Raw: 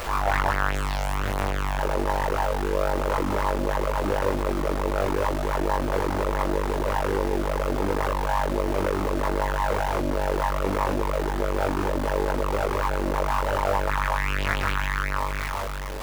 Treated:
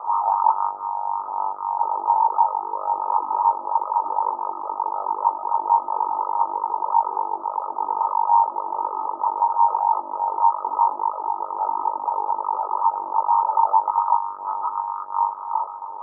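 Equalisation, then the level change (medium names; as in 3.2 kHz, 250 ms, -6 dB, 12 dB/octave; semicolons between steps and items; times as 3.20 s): resonant high-pass 890 Hz, resonance Q 5.3; rippled Chebyshev low-pass 1.3 kHz, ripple 9 dB; 0.0 dB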